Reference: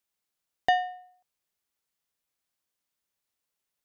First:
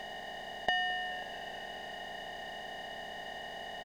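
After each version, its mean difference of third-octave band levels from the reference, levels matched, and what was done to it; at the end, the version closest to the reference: 13.5 dB: spectral levelling over time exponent 0.2; comb 4.8 ms, depth 64%; frequency-shifting echo 216 ms, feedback 58%, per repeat -80 Hz, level -20 dB; trim -6 dB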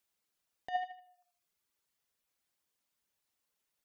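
3.5 dB: reverb removal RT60 0.69 s; compressor with a negative ratio -28 dBFS, ratio -0.5; tape echo 80 ms, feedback 35%, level -7 dB, low-pass 4.6 kHz; trim -4.5 dB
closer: second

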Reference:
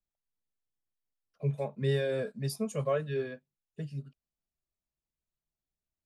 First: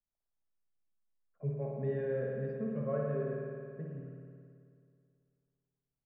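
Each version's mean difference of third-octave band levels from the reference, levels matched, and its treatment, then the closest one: 9.0 dB: low-pass 1.6 kHz 24 dB/octave; dynamic bell 940 Hz, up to -7 dB, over -49 dBFS, Q 0.99; spring tank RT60 2.3 s, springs 54 ms, chirp 65 ms, DRR -2 dB; trim -5 dB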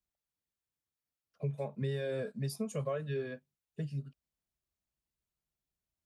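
2.0 dB: bass shelf 140 Hz +4 dB; compression 5:1, threshold -32 dBFS, peak gain reduction 9 dB; high-pass 43 Hz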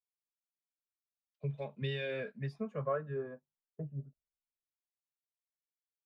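4.0 dB: compression 6:1, threshold -34 dBFS, peak gain reduction 10.5 dB; low-pass sweep 3.7 kHz -> 550 Hz, 1.51–4.27 s; three bands expanded up and down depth 100%; trim -1.5 dB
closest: second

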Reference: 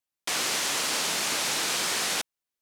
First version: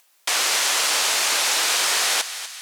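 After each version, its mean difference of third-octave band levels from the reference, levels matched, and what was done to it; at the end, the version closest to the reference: 5.5 dB: high-pass 540 Hz 12 dB/octave; upward compressor, threshold -49 dBFS; on a send: thinning echo 246 ms, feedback 57%, high-pass 930 Hz, level -11.5 dB; on the sum: trim +7 dB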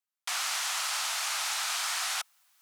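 10.5 dB: peaking EQ 1.3 kHz +5 dB 0.27 oct; reverse; upward compressor, threshold -41 dBFS; reverse; steep high-pass 690 Hz 48 dB/octave; trim -4 dB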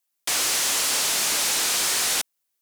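4.0 dB: high-pass 240 Hz 6 dB/octave; treble shelf 6 kHz +9.5 dB; saturation -23 dBFS, distortion -12 dB; trim +4.5 dB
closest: third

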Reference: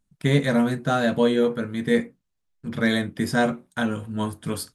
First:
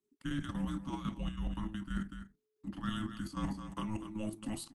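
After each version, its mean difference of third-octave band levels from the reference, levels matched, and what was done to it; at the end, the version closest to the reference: 7.5 dB: delay 240 ms -16 dB; level held to a coarse grid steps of 10 dB; frequency shift -430 Hz; reverse; compression 12:1, threshold -29 dBFS, peak gain reduction 12.5 dB; reverse; trim -4 dB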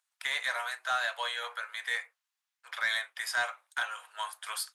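15.0 dB: Bessel high-pass 1.4 kHz, order 8; treble shelf 3.2 kHz -6.5 dB; in parallel at +2.5 dB: compression, threshold -43 dBFS, peak gain reduction 16 dB; on the sum: saturation -18.5 dBFS, distortion -22 dB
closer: first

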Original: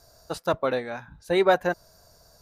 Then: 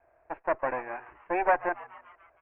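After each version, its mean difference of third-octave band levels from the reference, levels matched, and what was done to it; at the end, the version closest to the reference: 8.5 dB: comb filter that takes the minimum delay 1.2 ms; steep low-pass 2.5 kHz 72 dB/octave; resonant low shelf 260 Hz -11 dB, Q 3; on a send: frequency-shifting echo 143 ms, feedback 58%, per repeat +120 Hz, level -19 dB; on the sum: trim -4.5 dB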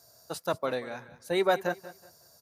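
3.5 dB: high-pass 94 Hz 24 dB/octave; treble shelf 6.6 kHz +10.5 dB; on a send: feedback delay 186 ms, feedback 27%, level -16 dB; on the sum: trim -5.5 dB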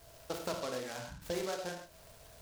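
13.5 dB: compression 8:1, threshold -34 dBFS, peak gain reduction 19 dB; on a send: flutter echo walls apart 8.1 m, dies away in 0.22 s; on the sum: gated-style reverb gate 150 ms flat, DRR 2 dB; delay time shaken by noise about 4.1 kHz, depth 0.071 ms; trim -2 dB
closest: second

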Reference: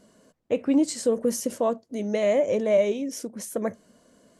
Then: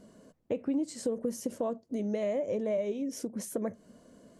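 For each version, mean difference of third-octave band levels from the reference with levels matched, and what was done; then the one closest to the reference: 3.0 dB: tilt shelf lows +4 dB, about 720 Hz; compression 3:1, threshold -32 dBFS, peak gain reduction 13.5 dB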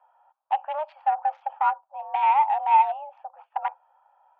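14.5 dB: local Wiener filter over 25 samples; mistuned SSB +300 Hz 470–2600 Hz; trim +4 dB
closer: first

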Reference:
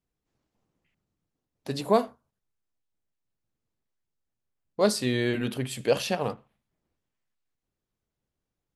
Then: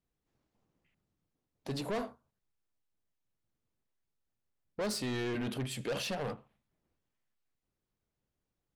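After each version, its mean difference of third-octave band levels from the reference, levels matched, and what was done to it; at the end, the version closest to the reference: 5.0 dB: treble shelf 5.5 kHz -5 dB; in parallel at +2.5 dB: peak limiter -19.5 dBFS, peak gain reduction 10.5 dB; on the sum: saturation -22.5 dBFS, distortion -7 dB; trim -8.5 dB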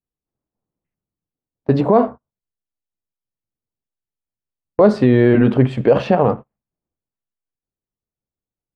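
7.5 dB: low-pass 1.2 kHz 12 dB/octave; gate -41 dBFS, range -25 dB; loudness maximiser +20 dB; trim -2 dB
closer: first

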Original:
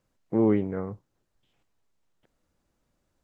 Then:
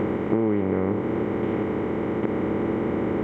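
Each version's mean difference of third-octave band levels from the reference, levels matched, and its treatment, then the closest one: 6.0 dB: spectral levelling over time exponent 0.2; compression 6:1, threshold -26 dBFS, peak gain reduction 10 dB; trim +7 dB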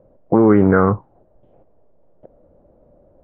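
4.0 dB: loudness maximiser +23 dB; touch-sensitive low-pass 580–1400 Hz up, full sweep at -6.5 dBFS; trim -3.5 dB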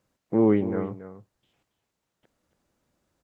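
1.0 dB: high-pass 86 Hz 6 dB/octave; on a send: delay 277 ms -12.5 dB; on the sum: trim +2.5 dB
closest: third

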